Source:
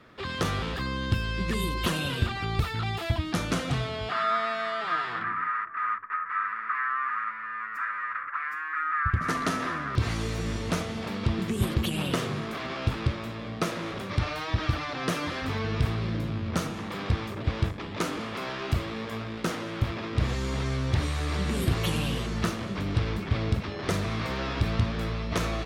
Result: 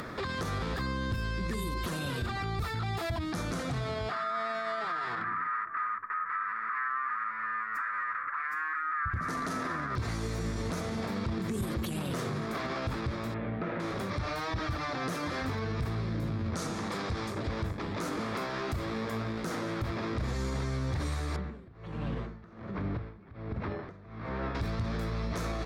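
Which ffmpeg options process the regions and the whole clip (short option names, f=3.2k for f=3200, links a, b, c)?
-filter_complex "[0:a]asettb=1/sr,asplit=3[a][b][c];[a]atrim=end=13.344[d];[b]atrim=start=13.34:end=13.8,asetpts=PTS-STARTPTS,afade=t=in:d=0.004:c=qsin,afade=t=out:st=0.456:d=0.004:c=qsin,lowpass=f=2.7k:w=0.5412,lowpass=f=2.7k:w=1.3066,bandreject=f=1.1k:w=8.6[e];[c]atrim=start=13.796[f];[d][e]acrossfade=d=0.004:c1=hsin:c2=qsin[g];[g][f]acrossfade=d=0.004:c1=qsin:c2=hsin,asettb=1/sr,asplit=3[h][i][j];[h]atrim=end=16.554[k];[i]atrim=start=16.55:end=17.49,asetpts=PTS-STARTPTS,afade=t=in:d=0.004:c=qsin,afade=t=out:st=0.936:d=0.004:c=qsin,lowpass=9.5k,bass=f=250:g=-3,treble=f=4k:g=6[l];[j]atrim=start=17.486[m];[k][l]acrossfade=d=0.004:c1=hsin:c2=qsin[n];[n][m]acrossfade=d=0.004:c1=qsin:c2=hsin,asettb=1/sr,asplit=3[o][p][q];[o]atrim=end=21.364[r];[p]atrim=start=21.36:end=24.55,asetpts=PTS-STARTPTS,afade=t=in:d=0.004:c=qsin,afade=t=out:st=3.186:d=0.004:c=qsin,lowpass=2.2k,acompressor=threshold=-30dB:ratio=6:attack=3.2:release=140:knee=1:detection=peak,aeval=exprs='val(0)*pow(10,-31*(0.5-0.5*cos(2*PI*1.3*n/s))/20)':c=same[s];[q]atrim=start=24.546[t];[r][s]acrossfade=d=0.004:c1=hsin:c2=qsin[u];[u][t]acrossfade=d=0.004:c1=qsin:c2=hsin,acompressor=mode=upward:threshold=-28dB:ratio=2.5,equalizer=f=2.9k:t=o:w=0.52:g=-9.5,alimiter=level_in=1.5dB:limit=-24dB:level=0:latency=1:release=34,volume=-1.5dB"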